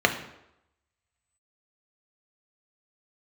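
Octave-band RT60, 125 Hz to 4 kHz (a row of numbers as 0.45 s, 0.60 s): 0.70 s, 0.75 s, 0.85 s, 0.85 s, 0.75 s, 0.65 s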